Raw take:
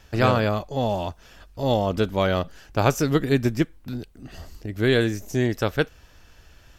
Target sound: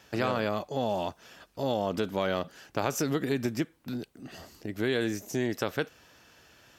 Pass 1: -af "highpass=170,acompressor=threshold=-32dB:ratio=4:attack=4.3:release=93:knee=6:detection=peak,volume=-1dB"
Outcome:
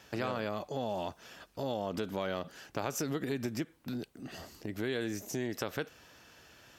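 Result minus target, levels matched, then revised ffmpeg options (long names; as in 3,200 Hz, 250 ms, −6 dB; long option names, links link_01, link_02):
downward compressor: peak gain reduction +6.5 dB
-af "highpass=170,acompressor=threshold=-23.5dB:ratio=4:attack=4.3:release=93:knee=6:detection=peak,volume=-1dB"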